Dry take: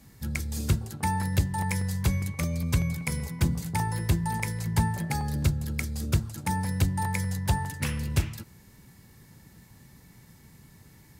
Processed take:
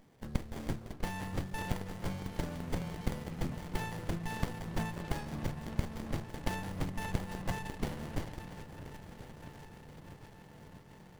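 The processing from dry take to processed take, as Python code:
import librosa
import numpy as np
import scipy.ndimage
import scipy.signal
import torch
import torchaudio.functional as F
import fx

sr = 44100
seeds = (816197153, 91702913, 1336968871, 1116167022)

p1 = fx.reverse_delay_fb(x, sr, ms=514, feedback_pct=75, wet_db=-14.0)
p2 = fx.highpass(p1, sr, hz=590.0, slope=6)
p3 = p2 + fx.echo_wet_lowpass(p2, sr, ms=647, feedback_pct=78, hz=2300.0, wet_db=-13.0, dry=0)
y = fx.running_max(p3, sr, window=33)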